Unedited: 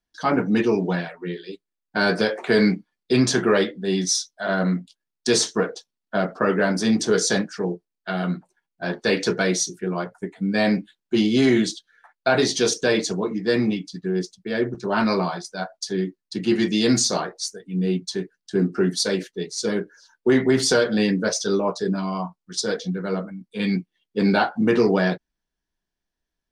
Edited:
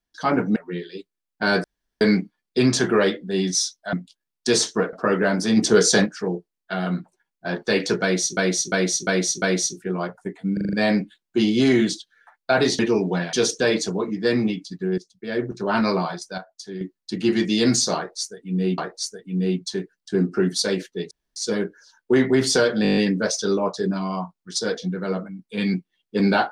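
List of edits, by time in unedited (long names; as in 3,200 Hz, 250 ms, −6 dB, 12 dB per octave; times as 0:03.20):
0:00.56–0:01.10: move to 0:12.56
0:02.18–0:02.55: fill with room tone
0:04.47–0:04.73: remove
0:05.73–0:06.30: remove
0:06.94–0:07.43: clip gain +4 dB
0:09.39–0:09.74: repeat, 5 plays
0:10.50: stutter 0.04 s, 6 plays
0:14.21–0:14.72: fade in, from −15.5 dB
0:15.61–0:16.04: clip gain −9 dB
0:17.19–0:18.01: repeat, 2 plays
0:19.52: splice in room tone 0.25 s
0:20.99: stutter 0.02 s, 8 plays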